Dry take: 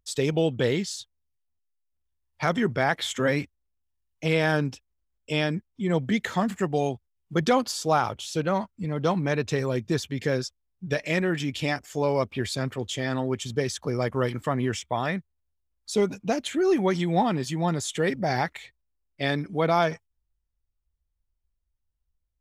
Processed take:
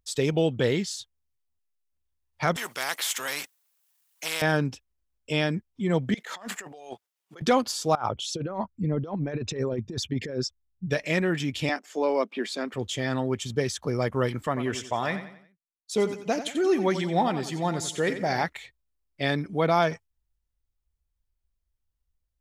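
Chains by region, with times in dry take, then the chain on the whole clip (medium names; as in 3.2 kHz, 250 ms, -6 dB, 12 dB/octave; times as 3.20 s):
2.56–4.42 s: high-pass 920 Hz + treble shelf 7.9 kHz +10.5 dB + spectrum-flattening compressor 2:1
6.14–7.42 s: high-pass 560 Hz + compressor with a negative ratio -41 dBFS
7.95–10.90 s: resonances exaggerated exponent 1.5 + compressor with a negative ratio -28 dBFS, ratio -0.5
11.69–12.74 s: steep high-pass 210 Hz 48 dB/octave + treble shelf 8.2 kHz -11.5 dB
14.47–18.44 s: expander -33 dBFS + bass shelf 200 Hz -6.5 dB + feedback delay 90 ms, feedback 41%, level -11 dB
whole clip: none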